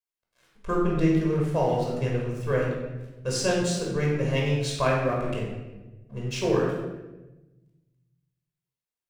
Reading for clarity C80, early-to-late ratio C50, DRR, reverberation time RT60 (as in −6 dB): 4.0 dB, 1.5 dB, −3.0 dB, 1.1 s